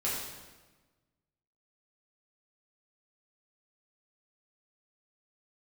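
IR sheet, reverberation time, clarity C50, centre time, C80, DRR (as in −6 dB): 1.2 s, 0.5 dB, 72 ms, 3.0 dB, −7.5 dB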